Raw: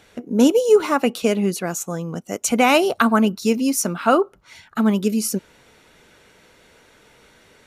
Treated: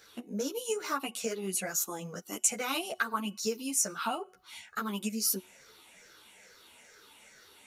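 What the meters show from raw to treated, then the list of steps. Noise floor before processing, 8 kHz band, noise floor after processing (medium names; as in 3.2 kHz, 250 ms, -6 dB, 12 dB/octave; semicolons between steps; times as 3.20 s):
-54 dBFS, -4.0 dB, -58 dBFS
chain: drifting ripple filter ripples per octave 0.57, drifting -2.3 Hz, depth 10 dB; feedback comb 370 Hz, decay 0.45 s, harmonics all, mix 30%; compression 4:1, threshold -26 dBFS, peak gain reduction 11.5 dB; tilt EQ +2.5 dB/octave; three-phase chorus; trim -1.5 dB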